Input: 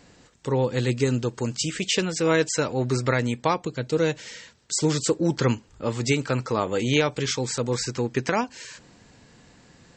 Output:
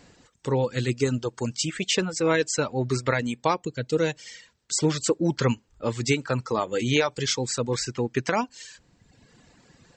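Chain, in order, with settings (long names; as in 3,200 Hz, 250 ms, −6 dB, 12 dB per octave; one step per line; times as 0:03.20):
0:07.01–0:07.79: dynamic equaliser 3,900 Hz, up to +3 dB, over −39 dBFS, Q 0.74
reverb reduction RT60 1.2 s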